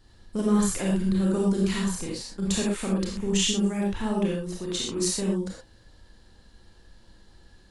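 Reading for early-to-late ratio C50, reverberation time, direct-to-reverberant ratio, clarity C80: 0.5 dB, not exponential, -3.5 dB, 5.0 dB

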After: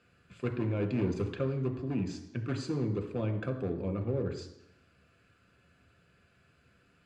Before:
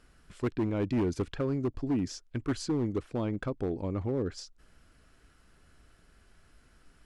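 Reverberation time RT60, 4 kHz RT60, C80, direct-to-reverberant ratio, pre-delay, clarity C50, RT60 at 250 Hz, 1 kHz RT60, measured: 0.85 s, 0.90 s, 12.0 dB, 5.0 dB, 3 ms, 10.0 dB, 0.85 s, 0.85 s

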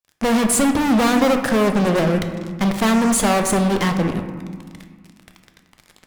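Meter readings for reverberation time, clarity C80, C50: 1.7 s, 9.0 dB, 7.5 dB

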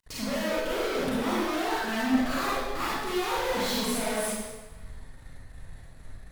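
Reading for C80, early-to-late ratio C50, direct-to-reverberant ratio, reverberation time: -0.5 dB, -4.5 dB, -9.0 dB, 1.3 s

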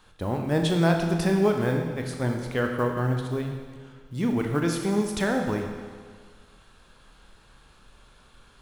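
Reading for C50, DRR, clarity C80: 4.5 dB, 2.5 dB, 5.5 dB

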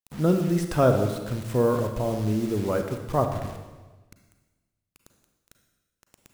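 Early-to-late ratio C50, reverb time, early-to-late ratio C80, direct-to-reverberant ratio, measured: 7.0 dB, 1.2 s, 9.0 dB, 5.5 dB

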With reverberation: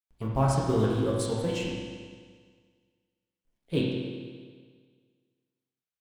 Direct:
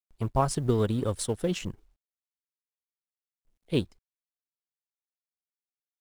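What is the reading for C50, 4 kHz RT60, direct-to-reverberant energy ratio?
0.0 dB, 1.7 s, -5.0 dB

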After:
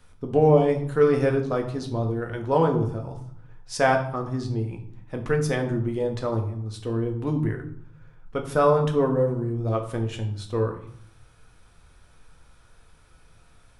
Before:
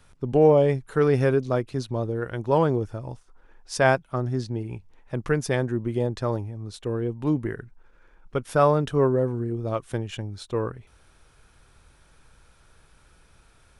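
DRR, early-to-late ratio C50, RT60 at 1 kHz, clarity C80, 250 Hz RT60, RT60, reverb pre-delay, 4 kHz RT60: 2.5 dB, 9.5 dB, 0.65 s, 12.5 dB, 0.90 s, 0.65 s, 4 ms, 0.50 s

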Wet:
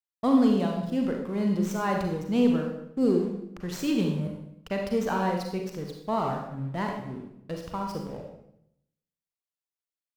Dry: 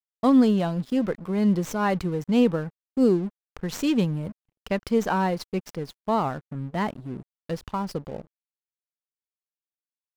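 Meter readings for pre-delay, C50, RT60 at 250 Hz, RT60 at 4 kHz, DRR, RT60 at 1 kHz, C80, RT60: 35 ms, 3.5 dB, 0.90 s, 0.70 s, 1.5 dB, 0.70 s, 6.5 dB, 0.75 s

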